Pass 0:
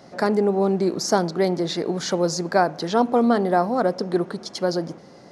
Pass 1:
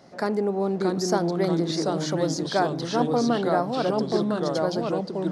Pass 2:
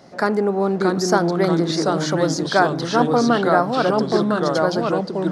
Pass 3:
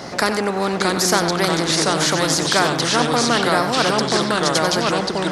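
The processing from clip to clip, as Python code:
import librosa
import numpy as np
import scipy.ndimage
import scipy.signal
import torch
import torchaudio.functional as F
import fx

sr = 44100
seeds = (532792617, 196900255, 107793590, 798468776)

y1 = fx.echo_pitch(x, sr, ms=601, semitones=-2, count=2, db_per_echo=-3.0)
y1 = F.gain(torch.from_numpy(y1), -5.0).numpy()
y2 = fx.dynamic_eq(y1, sr, hz=1400.0, q=1.6, threshold_db=-43.0, ratio=4.0, max_db=7)
y2 = F.gain(torch.from_numpy(y2), 5.0).numpy()
y3 = y2 + 10.0 ** (-15.0 / 20.0) * np.pad(y2, (int(93 * sr / 1000.0), 0))[:len(y2)]
y3 = fx.spectral_comp(y3, sr, ratio=2.0)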